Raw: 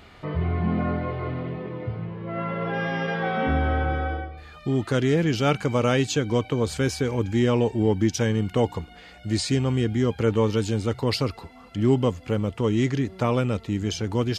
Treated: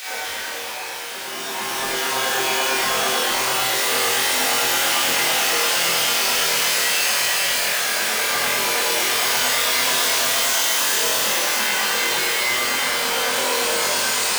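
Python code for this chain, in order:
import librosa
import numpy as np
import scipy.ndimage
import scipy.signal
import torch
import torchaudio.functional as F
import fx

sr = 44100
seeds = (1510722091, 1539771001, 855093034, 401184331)

p1 = scipy.signal.sosfilt(scipy.signal.butter(2, 69.0, 'highpass', fs=sr, output='sos'), x)
p2 = fx.high_shelf(p1, sr, hz=3800.0, db=8.0)
p3 = fx.quant_dither(p2, sr, seeds[0], bits=6, dither='none')
p4 = fx.comb_fb(p3, sr, f0_hz=270.0, decay_s=0.27, harmonics='all', damping=0.0, mix_pct=40)
p5 = (np.mod(10.0 ** (22.5 / 20.0) * p4 + 1.0, 2.0) - 1.0) / 10.0 ** (22.5 / 20.0)
p6 = fx.paulstretch(p5, sr, seeds[1], factor=5.9, window_s=0.5, from_s=4.3)
p7 = fx.chorus_voices(p6, sr, voices=6, hz=0.21, base_ms=24, depth_ms=1.3, mix_pct=40)
p8 = fx.filter_lfo_highpass(p7, sr, shape='saw_down', hz=8.9, low_hz=330.0, high_hz=2800.0, q=0.73)
p9 = p8 + fx.room_flutter(p8, sr, wall_m=4.0, rt60_s=0.23, dry=0)
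p10 = fx.rev_schroeder(p9, sr, rt60_s=0.89, comb_ms=32, drr_db=-10.0)
p11 = fx.env_flatten(p10, sr, amount_pct=50)
y = F.gain(torch.from_numpy(p11), 1.5).numpy()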